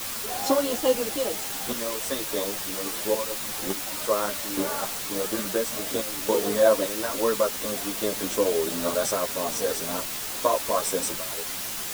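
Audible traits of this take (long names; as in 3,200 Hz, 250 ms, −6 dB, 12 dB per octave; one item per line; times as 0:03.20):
sample-and-hold tremolo, depth 85%
a quantiser's noise floor 6 bits, dither triangular
a shimmering, thickened sound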